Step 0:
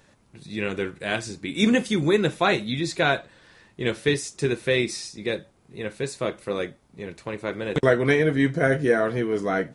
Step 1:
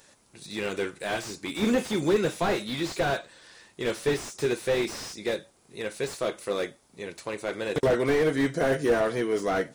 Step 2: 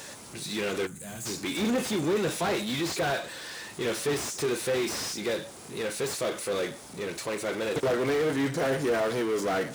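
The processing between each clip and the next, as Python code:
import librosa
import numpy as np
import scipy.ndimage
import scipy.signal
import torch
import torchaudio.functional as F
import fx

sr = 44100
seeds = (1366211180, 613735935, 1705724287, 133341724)

y1 = fx.bass_treble(x, sr, bass_db=-9, treble_db=10)
y1 = fx.slew_limit(y1, sr, full_power_hz=67.0)
y2 = fx.power_curve(y1, sr, exponent=0.5)
y2 = fx.spec_box(y2, sr, start_s=0.87, length_s=0.39, low_hz=270.0, high_hz=6100.0, gain_db=-15)
y2 = scipy.signal.sosfilt(scipy.signal.butter(2, 70.0, 'highpass', fs=sr, output='sos'), y2)
y2 = y2 * librosa.db_to_amplitude(-7.5)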